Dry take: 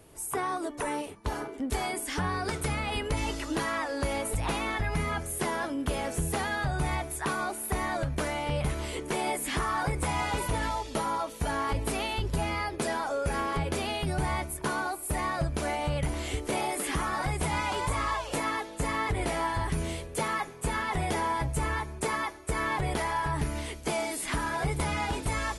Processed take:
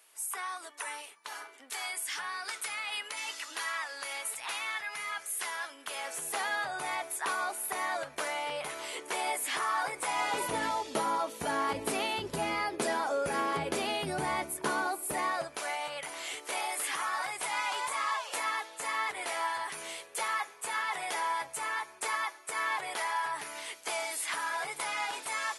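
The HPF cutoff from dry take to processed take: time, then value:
5.69 s 1400 Hz
6.49 s 660 Hz
10.06 s 660 Hz
10.57 s 250 Hz
15.04 s 250 Hz
15.65 s 880 Hz

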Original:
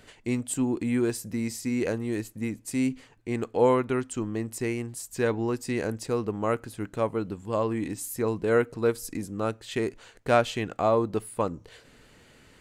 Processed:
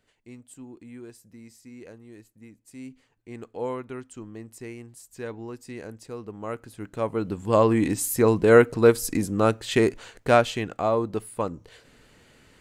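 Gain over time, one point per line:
2.54 s -17 dB
3.43 s -9.5 dB
6.17 s -9.5 dB
6.88 s -3 dB
7.54 s +8 dB
9.84 s +8 dB
10.79 s -0.5 dB

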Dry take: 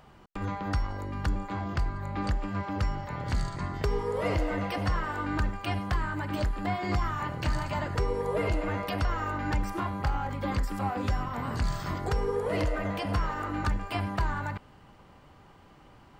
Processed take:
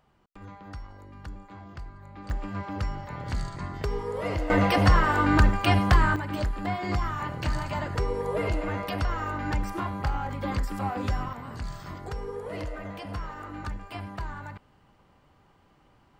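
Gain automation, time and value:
-11.5 dB
from 2.3 s -1.5 dB
from 4.5 s +9.5 dB
from 6.16 s +0.5 dB
from 11.33 s -6.5 dB

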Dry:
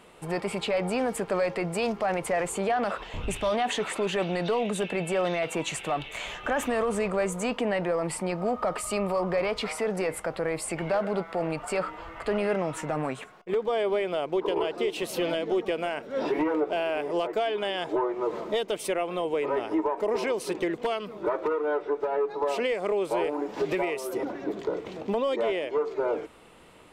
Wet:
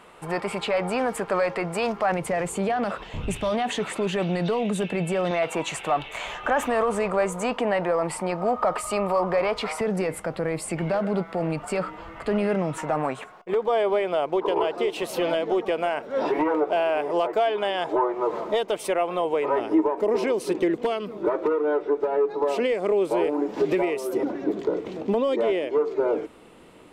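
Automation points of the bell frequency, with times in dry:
bell +7 dB 1.7 oct
1200 Hz
from 2.12 s 150 Hz
from 5.31 s 940 Hz
from 9.81 s 180 Hz
from 12.78 s 870 Hz
from 19.6 s 290 Hz

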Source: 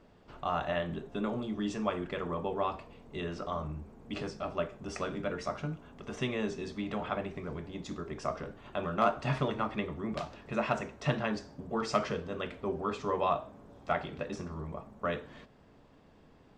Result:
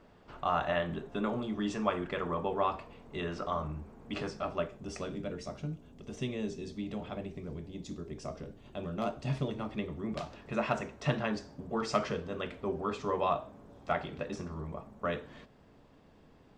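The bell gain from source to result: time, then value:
bell 1300 Hz 2 oct
4.41 s +3 dB
4.88 s -6.5 dB
5.46 s -13 dB
9.46 s -13 dB
10.36 s -1 dB

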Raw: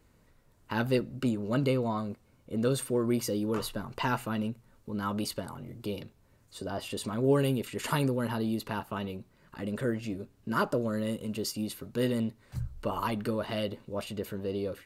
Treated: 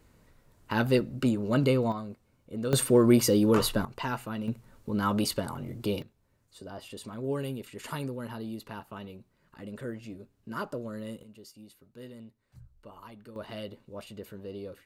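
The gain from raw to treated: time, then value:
+3 dB
from 1.92 s -4 dB
from 2.73 s +8 dB
from 3.85 s -3 dB
from 4.48 s +5 dB
from 6.02 s -7 dB
from 11.23 s -17 dB
from 13.36 s -7 dB

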